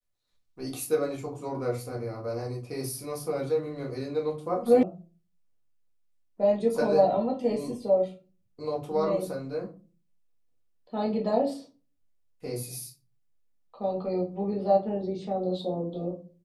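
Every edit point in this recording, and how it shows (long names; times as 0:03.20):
0:04.83: cut off before it has died away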